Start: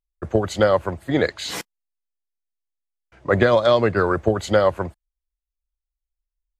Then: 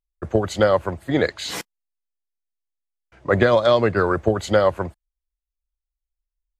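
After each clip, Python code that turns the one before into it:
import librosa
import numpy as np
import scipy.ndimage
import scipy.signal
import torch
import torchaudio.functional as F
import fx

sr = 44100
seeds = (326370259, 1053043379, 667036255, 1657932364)

y = x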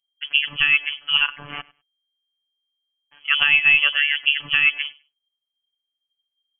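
y = fx.freq_invert(x, sr, carrier_hz=3200)
y = fx.robotise(y, sr, hz=145.0)
y = fx.echo_feedback(y, sr, ms=100, feedback_pct=18, wet_db=-22.5)
y = y * 10.0 ** (1.5 / 20.0)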